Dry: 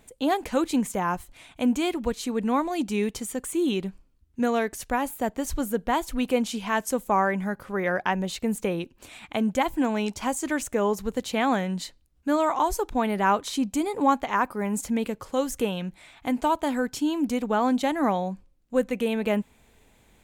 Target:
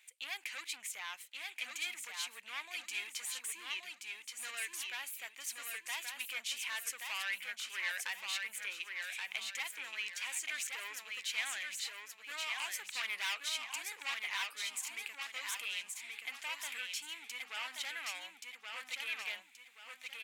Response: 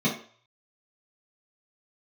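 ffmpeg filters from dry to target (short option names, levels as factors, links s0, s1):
-filter_complex "[0:a]asplit=3[s0][s1][s2];[s0]afade=t=out:st=12.85:d=0.02[s3];[s1]acontrast=69,afade=t=in:st=12.85:d=0.02,afade=t=out:st=13.33:d=0.02[s4];[s2]afade=t=in:st=13.33:d=0.02[s5];[s3][s4][s5]amix=inputs=3:normalize=0,asoftclip=type=tanh:threshold=0.0631,highpass=f=2300:t=q:w=2.5,aecho=1:1:1127|2254|3381|4508|5635:0.631|0.227|0.0818|0.0294|0.0106,volume=0.531"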